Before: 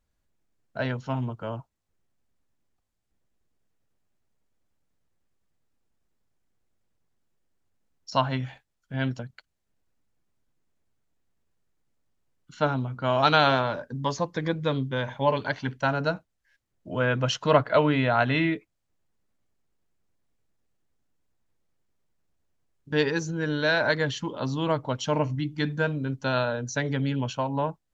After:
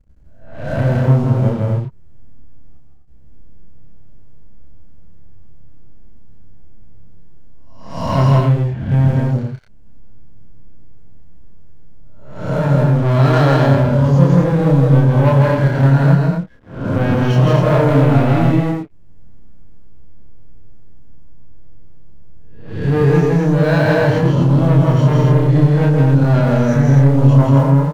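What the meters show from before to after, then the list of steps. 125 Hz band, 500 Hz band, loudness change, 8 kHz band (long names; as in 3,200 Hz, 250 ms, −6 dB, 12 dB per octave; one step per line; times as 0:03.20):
+20.0 dB, +10.0 dB, +13.0 dB, can't be measured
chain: peak hold with a rise ahead of every peak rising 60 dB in 0.52 s
spectral tilt −2.5 dB per octave
notch filter 3,600 Hz, Q 9.7
harmonic and percussive parts rebalanced percussive −12 dB
low-shelf EQ 370 Hz +9 dB
downward compressor 1.5 to 1, threshold −40 dBFS, peak gain reduction 11.5 dB
leveller curve on the samples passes 3
double-tracking delay 29 ms −2 dB
on a send: loudspeakers that aren't time-aligned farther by 56 metres −2 dB, 86 metres −4 dB
on the sum: level +2 dB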